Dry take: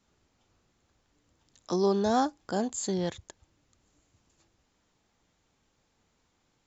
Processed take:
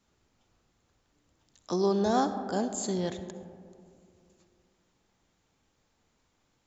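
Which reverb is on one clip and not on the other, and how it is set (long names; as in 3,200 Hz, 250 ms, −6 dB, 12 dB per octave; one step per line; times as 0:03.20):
comb and all-pass reverb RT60 2.4 s, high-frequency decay 0.3×, pre-delay 25 ms, DRR 9.5 dB
level −1 dB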